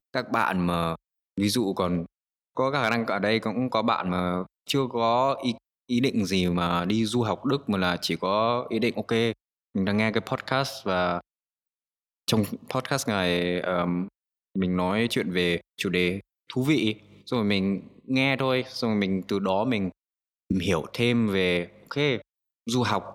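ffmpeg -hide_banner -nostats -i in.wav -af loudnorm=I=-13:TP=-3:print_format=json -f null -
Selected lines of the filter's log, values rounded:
"input_i" : "-26.1",
"input_tp" : "-7.7",
"input_lra" : "2.4",
"input_thresh" : "-36.4",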